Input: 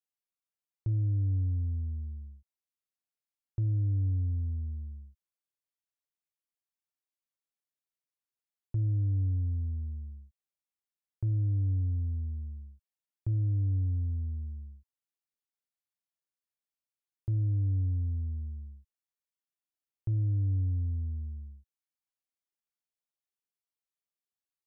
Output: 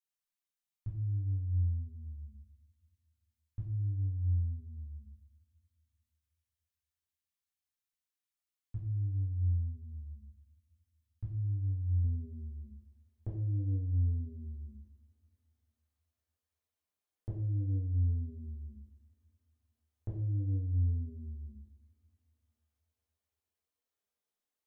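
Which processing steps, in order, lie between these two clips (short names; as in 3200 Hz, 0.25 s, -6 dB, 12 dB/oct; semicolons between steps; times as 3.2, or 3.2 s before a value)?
bell 470 Hz -10.5 dB 2.1 oct, from 12.04 s +7.5 dB; compressor, threshold -33 dBFS, peak gain reduction 7 dB; two-slope reverb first 0.6 s, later 2.9 s, from -27 dB, DRR -6 dB; gain -6 dB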